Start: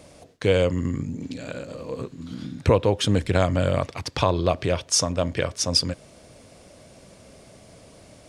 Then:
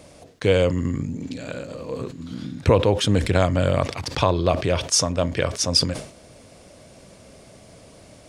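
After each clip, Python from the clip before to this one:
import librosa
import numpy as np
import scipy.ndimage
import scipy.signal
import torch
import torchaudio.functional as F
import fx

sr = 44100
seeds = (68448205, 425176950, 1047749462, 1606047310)

y = fx.sustainer(x, sr, db_per_s=110.0)
y = y * librosa.db_to_amplitude(1.5)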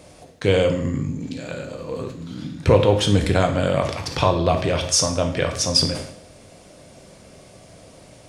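y = fx.rev_plate(x, sr, seeds[0], rt60_s=0.64, hf_ratio=0.9, predelay_ms=0, drr_db=4.0)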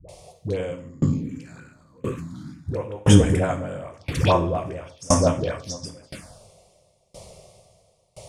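y = fx.env_phaser(x, sr, low_hz=230.0, high_hz=4200.0, full_db=-17.0)
y = fx.dispersion(y, sr, late='highs', ms=88.0, hz=490.0)
y = fx.tremolo_decay(y, sr, direction='decaying', hz=0.98, depth_db=29)
y = y * librosa.db_to_amplitude(7.5)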